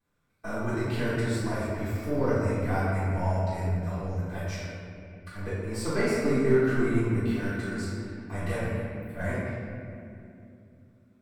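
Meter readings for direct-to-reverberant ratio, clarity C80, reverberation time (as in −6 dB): −16.5 dB, −0.5 dB, 2.6 s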